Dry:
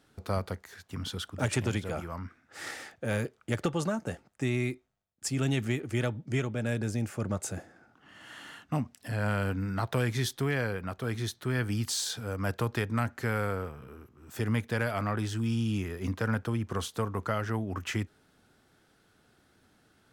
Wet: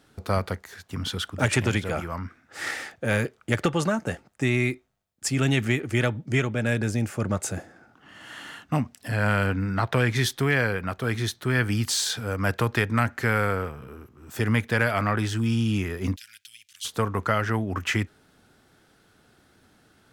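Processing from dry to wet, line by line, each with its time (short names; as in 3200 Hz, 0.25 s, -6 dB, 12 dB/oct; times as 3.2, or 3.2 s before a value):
9.46–10.16 high shelf 8200 Hz -9.5 dB
16.16–16.85 inverse Chebyshev high-pass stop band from 1100 Hz, stop band 50 dB
whole clip: dynamic EQ 2000 Hz, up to +5 dB, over -46 dBFS, Q 1; gain +5.5 dB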